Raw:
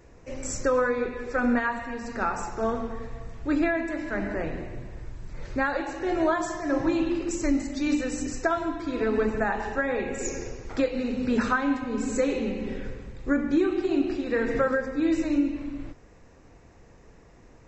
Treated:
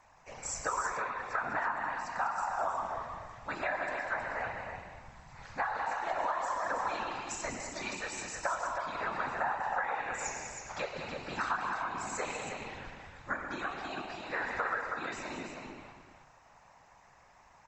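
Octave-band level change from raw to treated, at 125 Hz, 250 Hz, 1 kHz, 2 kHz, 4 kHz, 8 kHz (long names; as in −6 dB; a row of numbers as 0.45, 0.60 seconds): −11.5 dB, −22.5 dB, −1.0 dB, −4.0 dB, −3.0 dB, can't be measured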